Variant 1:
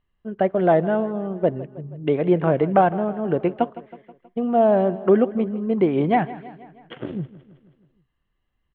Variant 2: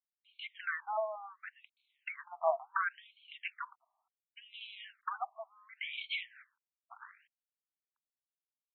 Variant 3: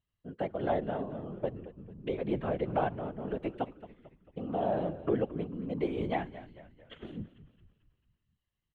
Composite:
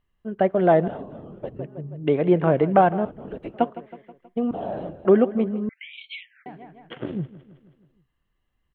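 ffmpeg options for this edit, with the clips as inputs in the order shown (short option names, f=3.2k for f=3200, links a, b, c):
-filter_complex "[2:a]asplit=3[a][b][c];[0:a]asplit=5[d][e][f][g][h];[d]atrim=end=0.882[i];[a]atrim=start=0.878:end=1.592[j];[e]atrim=start=1.588:end=3.052[k];[b]atrim=start=3.048:end=3.542[l];[f]atrim=start=3.538:end=4.512[m];[c]atrim=start=4.508:end=5.052[n];[g]atrim=start=5.048:end=5.692[o];[1:a]atrim=start=5.688:end=6.462[p];[h]atrim=start=6.458[q];[i][j]acrossfade=d=0.004:c1=hsin:c2=hsin[r];[r][k]acrossfade=d=0.004:c1=hsin:c2=hsin[s];[s][l]acrossfade=d=0.004:c1=hsin:c2=hsin[t];[t][m]acrossfade=d=0.004:c1=hsin:c2=hsin[u];[u][n]acrossfade=d=0.004:c1=hsin:c2=hsin[v];[v][o]acrossfade=d=0.004:c1=hsin:c2=hsin[w];[w][p]acrossfade=d=0.004:c1=hsin:c2=hsin[x];[x][q]acrossfade=d=0.004:c1=hsin:c2=hsin"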